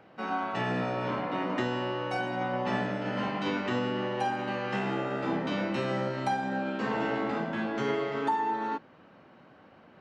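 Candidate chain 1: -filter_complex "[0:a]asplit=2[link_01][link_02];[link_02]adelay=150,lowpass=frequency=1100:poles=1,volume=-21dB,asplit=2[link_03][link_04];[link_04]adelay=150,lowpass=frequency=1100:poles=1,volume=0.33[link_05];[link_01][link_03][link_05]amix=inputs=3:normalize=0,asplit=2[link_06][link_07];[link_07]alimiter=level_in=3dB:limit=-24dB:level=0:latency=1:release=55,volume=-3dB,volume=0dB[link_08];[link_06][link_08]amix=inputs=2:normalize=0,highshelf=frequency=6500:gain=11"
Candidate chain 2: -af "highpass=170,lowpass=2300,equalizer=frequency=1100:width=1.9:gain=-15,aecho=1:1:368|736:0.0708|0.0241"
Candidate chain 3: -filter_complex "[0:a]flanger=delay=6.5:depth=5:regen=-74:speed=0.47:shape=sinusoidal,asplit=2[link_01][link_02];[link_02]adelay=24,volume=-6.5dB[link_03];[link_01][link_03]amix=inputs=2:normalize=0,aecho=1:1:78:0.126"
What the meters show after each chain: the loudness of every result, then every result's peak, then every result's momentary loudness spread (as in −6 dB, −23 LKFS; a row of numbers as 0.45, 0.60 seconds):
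−27.0, −34.5, −34.0 LKFS; −13.5, −20.0, −19.5 dBFS; 2, 3, 3 LU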